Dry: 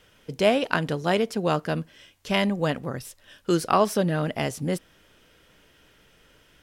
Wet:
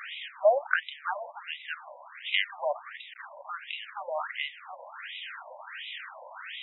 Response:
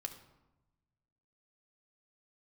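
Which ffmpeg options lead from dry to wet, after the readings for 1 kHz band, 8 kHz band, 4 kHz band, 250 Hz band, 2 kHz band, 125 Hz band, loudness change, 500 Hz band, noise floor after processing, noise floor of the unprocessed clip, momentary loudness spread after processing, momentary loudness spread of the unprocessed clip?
-6.5 dB, under -40 dB, -2.0 dB, under -40 dB, -0.5 dB, under -40 dB, -7.5 dB, -6.0 dB, -50 dBFS, -59 dBFS, 17 LU, 15 LU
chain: -af "aeval=exprs='val(0)+0.5*0.0376*sgn(val(0))':c=same,afftfilt=real='re*between(b*sr/1024,720*pow(2800/720,0.5+0.5*sin(2*PI*1.4*pts/sr))/1.41,720*pow(2800/720,0.5+0.5*sin(2*PI*1.4*pts/sr))*1.41)':imag='im*between(b*sr/1024,720*pow(2800/720,0.5+0.5*sin(2*PI*1.4*pts/sr))/1.41,720*pow(2800/720,0.5+0.5*sin(2*PI*1.4*pts/sr))*1.41)':win_size=1024:overlap=0.75"

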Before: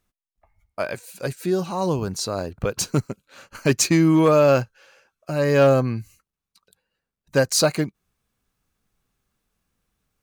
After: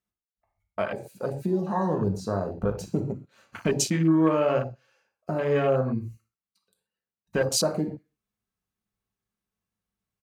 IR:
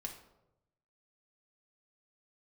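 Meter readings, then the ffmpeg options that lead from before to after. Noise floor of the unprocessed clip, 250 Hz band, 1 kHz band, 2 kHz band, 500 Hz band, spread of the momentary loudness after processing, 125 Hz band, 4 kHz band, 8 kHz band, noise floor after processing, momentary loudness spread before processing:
under -85 dBFS, -4.0 dB, -4.5 dB, -7.5 dB, -6.0 dB, 14 LU, -5.0 dB, -6.5 dB, -6.5 dB, under -85 dBFS, 15 LU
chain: -filter_complex "[0:a]highpass=44,aecho=1:1:63|126|189:0.0794|0.0397|0.0199,acompressor=threshold=-31dB:ratio=2[a];[1:a]atrim=start_sample=2205,atrim=end_sample=6174[b];[a][b]afir=irnorm=-1:irlink=0,afwtdn=0.0126,volume=6dB"

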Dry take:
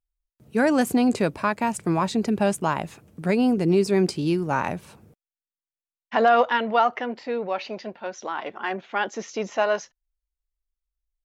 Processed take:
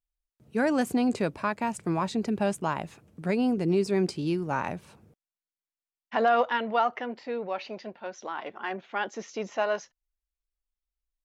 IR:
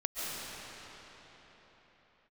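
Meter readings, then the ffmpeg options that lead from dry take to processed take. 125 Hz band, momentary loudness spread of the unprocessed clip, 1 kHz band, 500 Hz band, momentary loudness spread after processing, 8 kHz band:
-5.0 dB, 11 LU, -5.0 dB, -5.0 dB, 11 LU, -7.0 dB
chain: -af "highshelf=f=12k:g=-8.5,volume=-5dB"

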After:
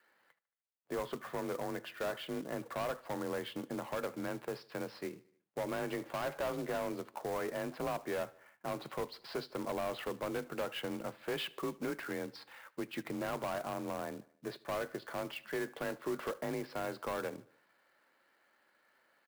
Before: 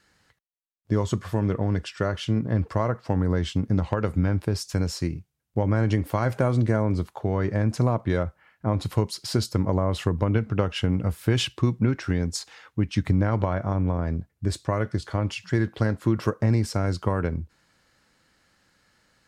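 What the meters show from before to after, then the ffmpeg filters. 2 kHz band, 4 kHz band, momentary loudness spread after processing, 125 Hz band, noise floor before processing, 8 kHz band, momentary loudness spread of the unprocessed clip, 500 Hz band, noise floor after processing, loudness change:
-7.5 dB, -11.0 dB, 6 LU, -27.5 dB, -73 dBFS, -12.5 dB, 6 LU, -9.0 dB, -74 dBFS, -14.0 dB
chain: -filter_complex "[0:a]highpass=510,lowpass=2.2k,afreqshift=31,aresample=11025,asoftclip=type=tanh:threshold=-30dB,aresample=44100,acrusher=bits=3:mode=log:mix=0:aa=0.000001,equalizer=f=1.7k:w=0.35:g=-4.5,asplit=2[a][b];[b]aecho=0:1:75|150|225|300:0.0708|0.0404|0.023|0.0131[c];[a][c]amix=inputs=2:normalize=0,volume=1dB"

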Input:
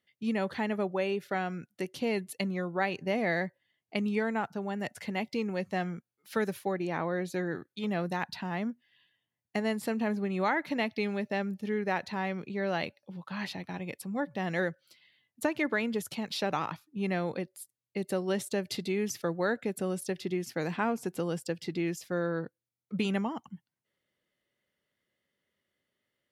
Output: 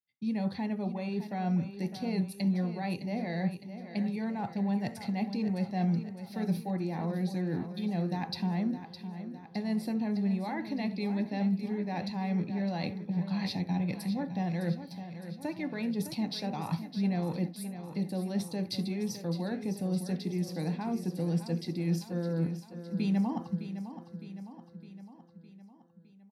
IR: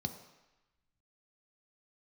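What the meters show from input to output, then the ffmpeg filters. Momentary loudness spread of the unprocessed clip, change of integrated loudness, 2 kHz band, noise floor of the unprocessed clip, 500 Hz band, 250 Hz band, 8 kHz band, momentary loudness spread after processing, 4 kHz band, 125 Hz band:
8 LU, -0.5 dB, -10.0 dB, under -85 dBFS, -6.5 dB, +3.0 dB, -4.5 dB, 9 LU, -1.5 dB, +6.0 dB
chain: -filter_complex "[0:a]agate=range=-33dB:threshold=-58dB:ratio=3:detection=peak,highshelf=f=4.8k:g=5,areverse,acompressor=threshold=-37dB:ratio=6,areverse,aecho=1:1:610|1220|1830|2440|3050|3660:0.282|0.161|0.0916|0.0522|0.0298|0.017[a];[1:a]atrim=start_sample=2205,atrim=end_sample=3969[b];[a][b]afir=irnorm=-1:irlink=0"

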